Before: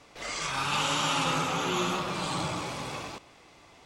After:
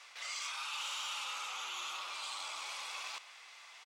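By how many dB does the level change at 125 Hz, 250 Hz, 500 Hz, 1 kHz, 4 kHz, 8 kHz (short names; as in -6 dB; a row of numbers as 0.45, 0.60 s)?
under -40 dB, under -35 dB, -24.5 dB, -13.5 dB, -7.5 dB, -7.5 dB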